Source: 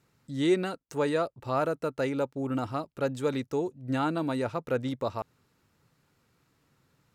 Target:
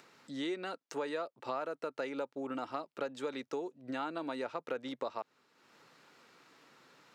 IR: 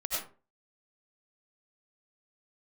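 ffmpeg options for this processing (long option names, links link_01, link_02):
-filter_complex "[0:a]lowshelf=frequency=350:gain=-8,acompressor=threshold=-37dB:ratio=6,acrossover=split=200 6400:gain=0.0708 1 0.2[link_01][link_02][link_03];[link_01][link_02][link_03]amix=inputs=3:normalize=0,acompressor=mode=upward:threshold=-55dB:ratio=2.5,volume=3dB"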